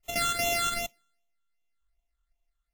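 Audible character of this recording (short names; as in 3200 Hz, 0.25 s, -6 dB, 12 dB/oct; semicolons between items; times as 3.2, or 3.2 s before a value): a buzz of ramps at a fixed pitch in blocks of 64 samples; phasing stages 8, 2.6 Hz, lowest notch 660–1500 Hz; WMA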